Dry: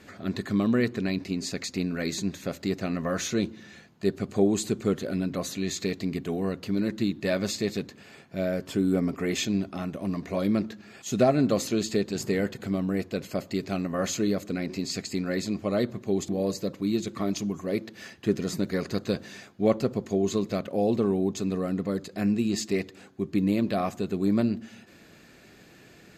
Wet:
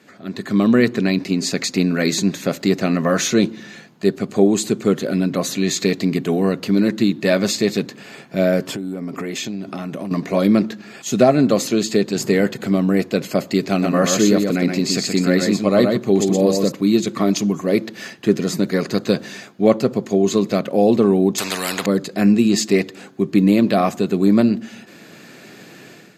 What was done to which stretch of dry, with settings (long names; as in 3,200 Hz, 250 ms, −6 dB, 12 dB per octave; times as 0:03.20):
0:08.67–0:10.11: downward compressor 12 to 1, threshold −34 dBFS
0:13.70–0:16.72: single-tap delay 122 ms −4.5 dB
0:21.38–0:21.86: every bin compressed towards the loudest bin 4 to 1
whole clip: high-pass filter 130 Hz 24 dB per octave; automatic gain control gain up to 12 dB